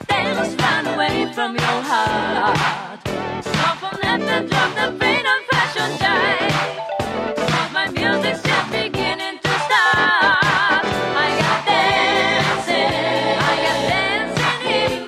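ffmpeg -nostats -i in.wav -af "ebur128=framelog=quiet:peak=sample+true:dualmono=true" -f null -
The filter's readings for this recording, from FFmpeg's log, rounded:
Integrated loudness:
  I:         -14.7 LUFS
  Threshold: -24.7 LUFS
Loudness range:
  LRA:         3.8 LU
  Threshold: -34.6 LUFS
  LRA low:   -16.4 LUFS
  LRA high:  -12.6 LUFS
Sample peak:
  Peak:       -2.9 dBFS
True peak:
  Peak:       -2.9 dBFS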